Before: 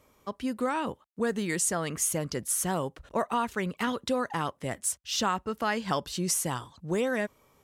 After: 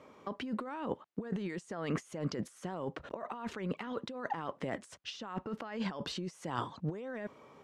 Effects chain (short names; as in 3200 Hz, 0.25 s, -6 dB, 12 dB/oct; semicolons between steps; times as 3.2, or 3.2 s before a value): HPF 180 Hz 12 dB/oct; negative-ratio compressor -39 dBFS, ratio -1; tape spacing loss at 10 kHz 23 dB; gain +2 dB